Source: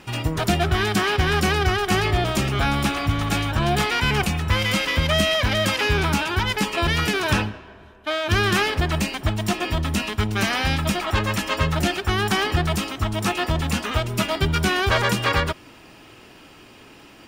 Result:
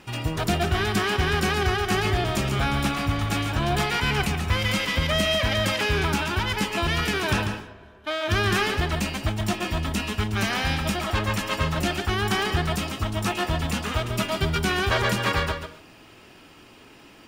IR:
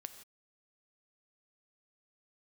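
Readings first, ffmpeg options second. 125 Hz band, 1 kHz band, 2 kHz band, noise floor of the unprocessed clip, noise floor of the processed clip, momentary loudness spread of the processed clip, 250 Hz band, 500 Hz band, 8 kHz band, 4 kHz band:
−3.0 dB, −3.0 dB, −2.5 dB, −47 dBFS, −50 dBFS, 5 LU, −3.0 dB, −2.5 dB, −3.0 dB, −2.5 dB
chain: -filter_complex "[0:a]asplit=2[link_01][link_02];[1:a]atrim=start_sample=2205,asetrate=48510,aresample=44100,adelay=142[link_03];[link_02][link_03]afir=irnorm=-1:irlink=0,volume=-2dB[link_04];[link_01][link_04]amix=inputs=2:normalize=0,volume=-3.5dB"

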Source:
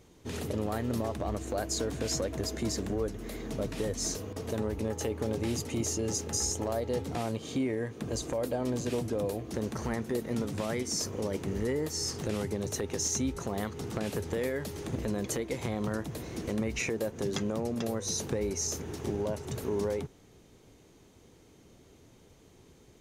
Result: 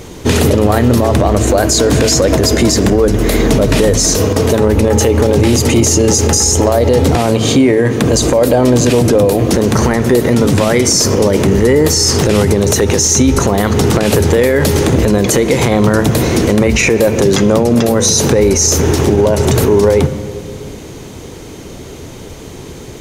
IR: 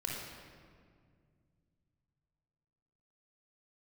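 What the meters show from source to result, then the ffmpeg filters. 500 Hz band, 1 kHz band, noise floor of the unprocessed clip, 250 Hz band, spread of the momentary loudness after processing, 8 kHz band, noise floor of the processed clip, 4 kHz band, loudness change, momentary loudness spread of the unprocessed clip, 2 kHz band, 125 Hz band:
+22.5 dB, +22.0 dB, −59 dBFS, +22.0 dB, 12 LU, +21.5 dB, −30 dBFS, +22.0 dB, +22.5 dB, 5 LU, +22.5 dB, +23.5 dB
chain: -filter_complex "[0:a]bandreject=frequency=54.8:width_type=h:width=4,bandreject=frequency=109.6:width_type=h:width=4,bandreject=frequency=164.4:width_type=h:width=4,bandreject=frequency=219.2:width_type=h:width=4,asplit=2[link_01][link_02];[1:a]atrim=start_sample=2205[link_03];[link_02][link_03]afir=irnorm=-1:irlink=0,volume=-16.5dB[link_04];[link_01][link_04]amix=inputs=2:normalize=0,alimiter=level_in=28dB:limit=-1dB:release=50:level=0:latency=1,volume=-1dB"

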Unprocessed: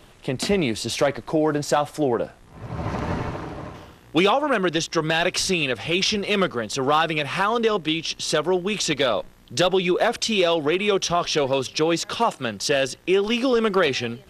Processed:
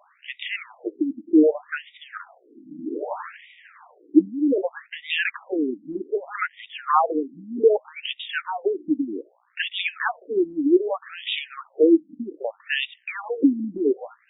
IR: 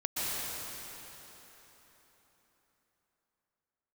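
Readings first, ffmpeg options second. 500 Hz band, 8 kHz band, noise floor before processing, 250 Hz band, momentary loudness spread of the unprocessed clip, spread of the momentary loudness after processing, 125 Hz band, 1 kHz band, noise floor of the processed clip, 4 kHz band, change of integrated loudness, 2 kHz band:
−3.0 dB, below −40 dB, −50 dBFS, +2.5 dB, 8 LU, 15 LU, below −20 dB, −4.5 dB, −62 dBFS, −8.0 dB, −2.0 dB, −3.5 dB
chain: -filter_complex "[0:a]lowshelf=frequency=220:width_type=q:width=3:gain=-10,asplit=2[link_01][link_02];[link_02]aeval=exprs='sgn(val(0))*max(abs(val(0))-0.0224,0)':channel_layout=same,volume=-7dB[link_03];[link_01][link_03]amix=inputs=2:normalize=0,afftfilt=real='re*between(b*sr/1024,220*pow(2700/220,0.5+0.5*sin(2*PI*0.64*pts/sr))/1.41,220*pow(2700/220,0.5+0.5*sin(2*PI*0.64*pts/sr))*1.41)':imag='im*between(b*sr/1024,220*pow(2700/220,0.5+0.5*sin(2*PI*0.64*pts/sr))/1.41,220*pow(2700/220,0.5+0.5*sin(2*PI*0.64*pts/sr))*1.41)':win_size=1024:overlap=0.75"

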